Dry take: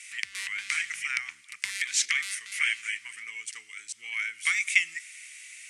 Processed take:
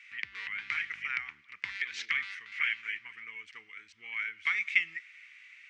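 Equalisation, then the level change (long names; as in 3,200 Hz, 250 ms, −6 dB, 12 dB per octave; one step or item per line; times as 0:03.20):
dynamic equaliser 4,400 Hz, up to +3 dB, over −37 dBFS, Q 0.95
high-frequency loss of the air 66 metres
head-to-tape spacing loss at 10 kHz 40 dB
+5.0 dB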